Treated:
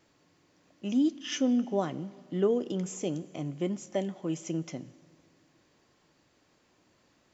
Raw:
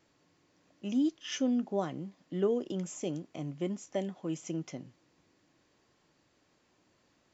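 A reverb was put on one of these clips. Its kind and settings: Schroeder reverb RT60 2.2 s, combs from 33 ms, DRR 19 dB; trim +3 dB

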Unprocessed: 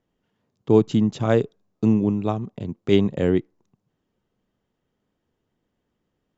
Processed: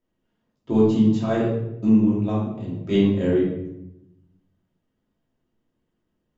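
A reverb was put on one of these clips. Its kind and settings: simulated room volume 260 m³, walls mixed, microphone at 2.8 m; trim -10.5 dB

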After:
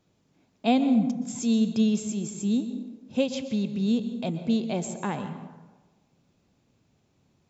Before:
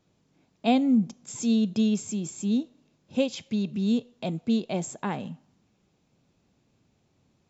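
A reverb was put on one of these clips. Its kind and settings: plate-style reverb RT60 1.2 s, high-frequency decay 0.5×, pre-delay 110 ms, DRR 9.5 dB

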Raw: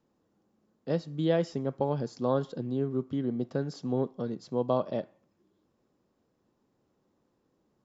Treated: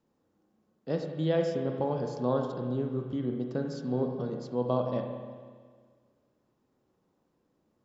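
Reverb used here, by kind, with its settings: spring tank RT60 1.7 s, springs 32/45 ms, chirp 40 ms, DRR 3 dB; trim -2 dB

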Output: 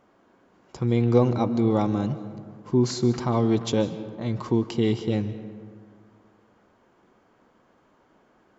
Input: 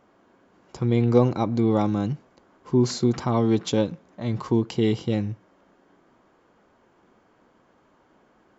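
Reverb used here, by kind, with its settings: algorithmic reverb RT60 2 s, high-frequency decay 0.45×, pre-delay 110 ms, DRR 12.5 dB; trim -1 dB

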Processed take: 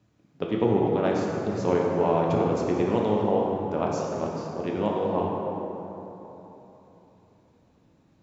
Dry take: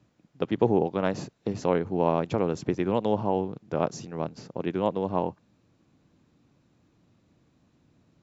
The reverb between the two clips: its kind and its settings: plate-style reverb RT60 3.5 s, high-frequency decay 0.5×, DRR -2.5 dB; trim -2.5 dB

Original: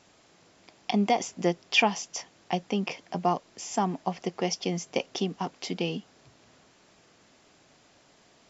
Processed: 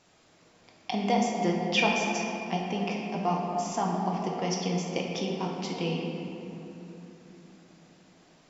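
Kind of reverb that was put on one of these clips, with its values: simulated room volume 170 m³, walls hard, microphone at 0.56 m; trim -4 dB

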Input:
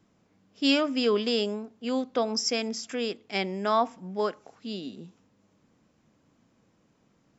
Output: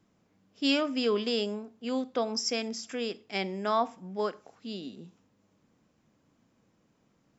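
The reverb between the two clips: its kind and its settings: Schroeder reverb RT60 0.31 s, combs from 31 ms, DRR 19.5 dB; trim -3 dB

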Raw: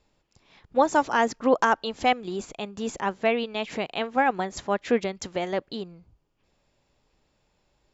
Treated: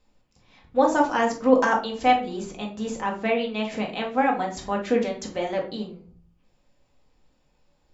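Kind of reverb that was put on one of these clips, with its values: simulated room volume 340 m³, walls furnished, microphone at 2 m; trim -3 dB

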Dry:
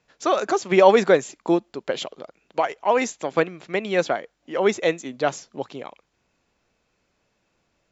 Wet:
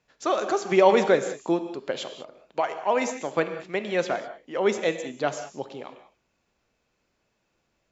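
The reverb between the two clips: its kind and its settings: gated-style reverb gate 220 ms flat, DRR 8.5 dB; trim -4 dB

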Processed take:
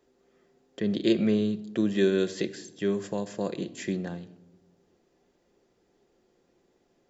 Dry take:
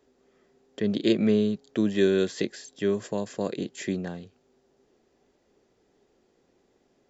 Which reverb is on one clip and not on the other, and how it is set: simulated room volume 3300 m³, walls furnished, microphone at 0.84 m; trim -2 dB

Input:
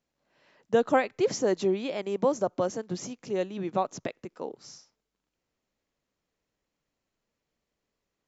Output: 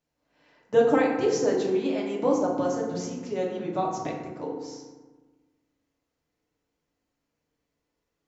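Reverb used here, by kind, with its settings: FDN reverb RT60 1.3 s, low-frequency decay 1.3×, high-frequency decay 0.45×, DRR -3 dB; trim -3 dB

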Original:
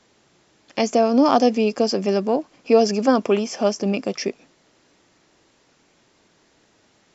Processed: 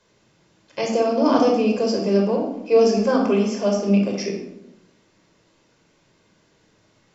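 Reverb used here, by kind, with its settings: simulated room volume 2200 m³, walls furnished, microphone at 5.1 m; trim -6.5 dB

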